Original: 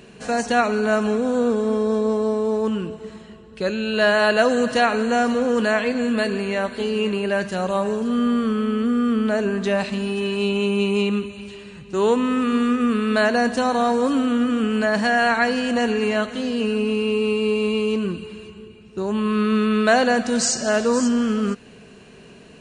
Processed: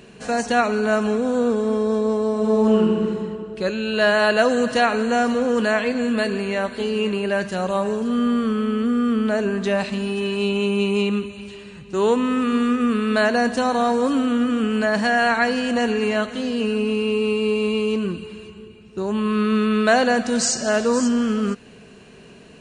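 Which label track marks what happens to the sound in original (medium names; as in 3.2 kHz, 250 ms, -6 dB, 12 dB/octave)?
2.310000	3.010000	reverb throw, RT60 2.4 s, DRR -2.5 dB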